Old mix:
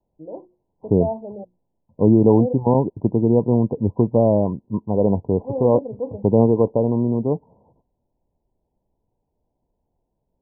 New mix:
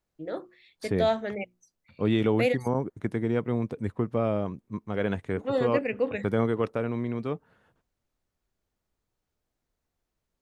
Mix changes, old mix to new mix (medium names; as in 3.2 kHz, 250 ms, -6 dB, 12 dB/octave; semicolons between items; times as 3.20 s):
second voice -11.0 dB; master: remove Chebyshev low-pass 1 kHz, order 8